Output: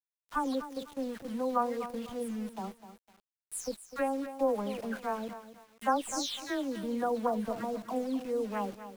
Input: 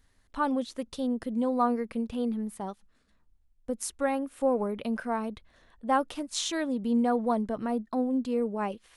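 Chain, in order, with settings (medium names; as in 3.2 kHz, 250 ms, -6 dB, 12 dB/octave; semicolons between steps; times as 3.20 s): delay that grows with frequency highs early, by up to 289 ms; small samples zeroed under -42.5 dBFS; bit-crushed delay 251 ms, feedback 35%, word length 8-bit, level -11.5 dB; trim -2.5 dB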